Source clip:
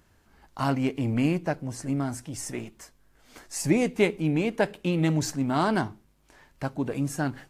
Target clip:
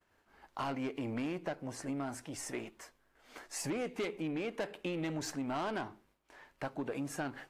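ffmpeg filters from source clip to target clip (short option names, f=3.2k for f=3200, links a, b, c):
-af "agate=range=-33dB:threshold=-57dB:ratio=3:detection=peak,bass=f=250:g=-13,treble=f=4k:g=-8,asoftclip=type=tanh:threshold=-25dB,acompressor=threshold=-34dB:ratio=6"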